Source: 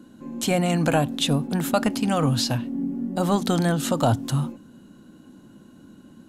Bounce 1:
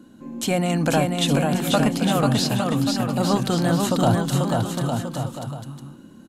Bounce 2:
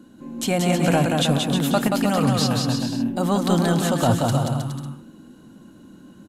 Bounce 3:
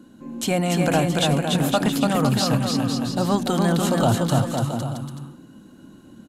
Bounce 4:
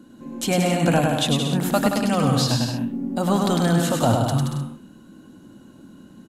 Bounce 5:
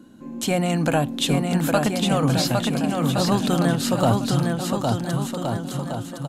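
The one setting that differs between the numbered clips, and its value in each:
bouncing-ball delay, first gap: 490, 180, 290, 100, 810 milliseconds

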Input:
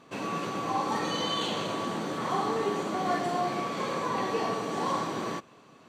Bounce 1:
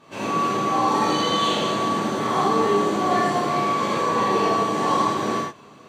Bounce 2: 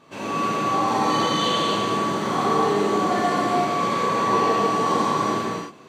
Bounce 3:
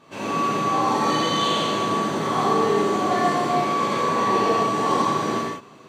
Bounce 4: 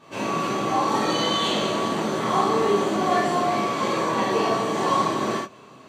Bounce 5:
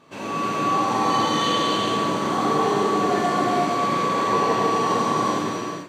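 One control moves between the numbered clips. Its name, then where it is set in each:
reverb whose tail is shaped and stops, gate: 140, 330, 220, 90, 500 milliseconds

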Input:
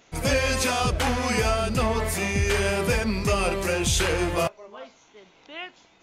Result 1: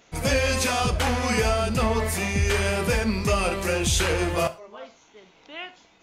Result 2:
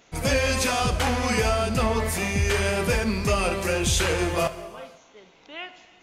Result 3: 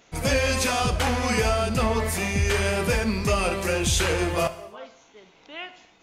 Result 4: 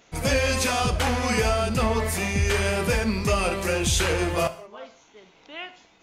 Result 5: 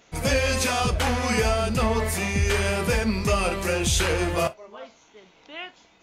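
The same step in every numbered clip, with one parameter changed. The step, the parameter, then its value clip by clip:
reverb whose tail is shaped and stops, gate: 140, 540, 310, 210, 80 milliseconds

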